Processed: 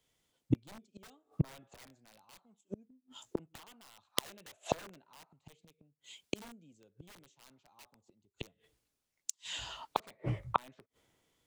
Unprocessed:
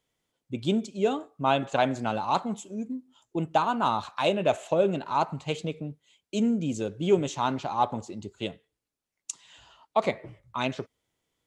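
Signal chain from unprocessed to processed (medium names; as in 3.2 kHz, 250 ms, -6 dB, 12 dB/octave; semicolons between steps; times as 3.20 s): integer overflow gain 19.5 dB; inverted gate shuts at -30 dBFS, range -39 dB; three bands expanded up and down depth 40%; trim +11 dB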